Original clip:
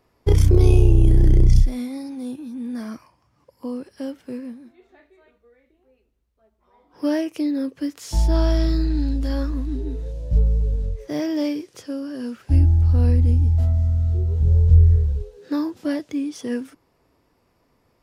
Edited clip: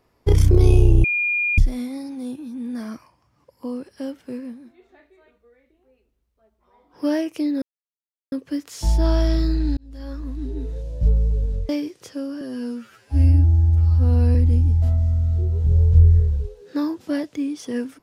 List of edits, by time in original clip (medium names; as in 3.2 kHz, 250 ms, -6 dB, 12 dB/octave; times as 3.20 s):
1.04–1.58 s: bleep 2.42 kHz -18.5 dBFS
7.62 s: insert silence 0.70 s
9.07–9.97 s: fade in
10.99–11.42 s: delete
12.14–13.11 s: stretch 2×